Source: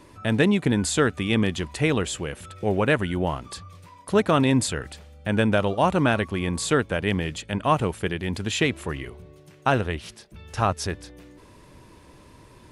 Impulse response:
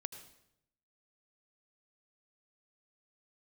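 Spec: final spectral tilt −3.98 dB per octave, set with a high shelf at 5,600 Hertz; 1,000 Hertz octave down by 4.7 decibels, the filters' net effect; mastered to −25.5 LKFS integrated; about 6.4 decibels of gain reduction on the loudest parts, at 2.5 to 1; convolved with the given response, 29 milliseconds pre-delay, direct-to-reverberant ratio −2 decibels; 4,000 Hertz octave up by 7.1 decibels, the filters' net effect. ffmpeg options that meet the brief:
-filter_complex "[0:a]equalizer=frequency=1000:width_type=o:gain=-7,equalizer=frequency=4000:width_type=o:gain=7,highshelf=frequency=5600:gain=7,acompressor=threshold=-25dB:ratio=2.5,asplit=2[link_01][link_02];[1:a]atrim=start_sample=2205,adelay=29[link_03];[link_02][link_03]afir=irnorm=-1:irlink=0,volume=4.5dB[link_04];[link_01][link_04]amix=inputs=2:normalize=0,volume=-1.5dB"

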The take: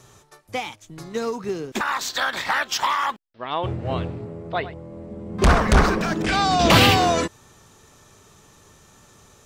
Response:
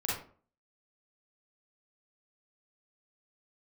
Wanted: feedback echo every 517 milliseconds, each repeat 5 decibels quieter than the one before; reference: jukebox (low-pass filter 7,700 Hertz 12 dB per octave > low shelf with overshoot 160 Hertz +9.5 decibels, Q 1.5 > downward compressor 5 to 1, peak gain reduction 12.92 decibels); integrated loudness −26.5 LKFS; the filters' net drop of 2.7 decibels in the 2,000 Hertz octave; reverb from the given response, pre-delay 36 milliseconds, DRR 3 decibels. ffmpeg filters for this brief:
-filter_complex "[0:a]equalizer=frequency=2000:width_type=o:gain=-3.5,aecho=1:1:517|1034|1551|2068|2585|3102|3619:0.562|0.315|0.176|0.0988|0.0553|0.031|0.0173,asplit=2[link_01][link_02];[1:a]atrim=start_sample=2205,adelay=36[link_03];[link_02][link_03]afir=irnorm=-1:irlink=0,volume=-9dB[link_04];[link_01][link_04]amix=inputs=2:normalize=0,lowpass=7700,lowshelf=frequency=160:width_type=q:width=1.5:gain=9.5,acompressor=threshold=-14dB:ratio=5,volume=-5dB"

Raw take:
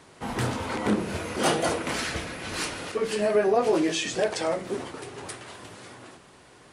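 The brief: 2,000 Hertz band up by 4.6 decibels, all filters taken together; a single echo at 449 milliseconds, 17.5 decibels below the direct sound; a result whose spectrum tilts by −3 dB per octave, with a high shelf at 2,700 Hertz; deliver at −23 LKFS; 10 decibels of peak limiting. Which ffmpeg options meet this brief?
ffmpeg -i in.wav -af "equalizer=frequency=2000:width_type=o:gain=3,highshelf=frequency=2700:gain=6.5,alimiter=limit=-17dB:level=0:latency=1,aecho=1:1:449:0.133,volume=4.5dB" out.wav

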